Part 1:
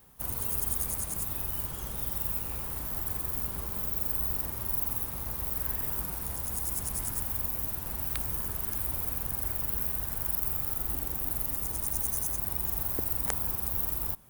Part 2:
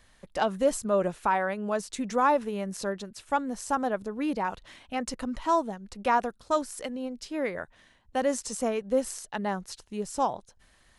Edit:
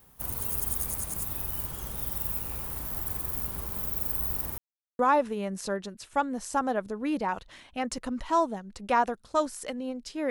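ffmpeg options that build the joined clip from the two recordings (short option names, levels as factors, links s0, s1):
-filter_complex "[0:a]apad=whole_dur=10.3,atrim=end=10.3,asplit=2[s0][s1];[s0]atrim=end=4.58,asetpts=PTS-STARTPTS,afade=t=out:st=4.576:d=0.004:c=hsin[s2];[s1]atrim=start=4.58:end=4.99,asetpts=PTS-STARTPTS,volume=0[s3];[1:a]atrim=start=2.15:end=7.46,asetpts=PTS-STARTPTS,afade=t=in:d=0.004:c=hsin[s4];[s2][s3][s4]concat=n=3:v=0:a=1"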